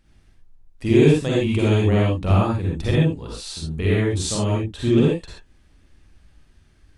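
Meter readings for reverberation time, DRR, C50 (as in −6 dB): non-exponential decay, −5.5 dB, −3.5 dB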